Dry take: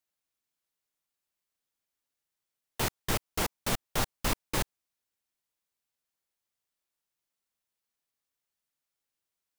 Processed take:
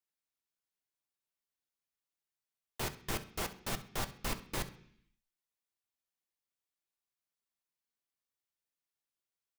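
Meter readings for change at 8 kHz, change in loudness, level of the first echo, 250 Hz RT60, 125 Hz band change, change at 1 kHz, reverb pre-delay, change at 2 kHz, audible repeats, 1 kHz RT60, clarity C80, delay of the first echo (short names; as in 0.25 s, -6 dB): -7.5 dB, -7.0 dB, -17.5 dB, 0.85 s, -7.0 dB, -7.0 dB, 3 ms, -6.5 dB, 1, 0.60 s, 18.0 dB, 66 ms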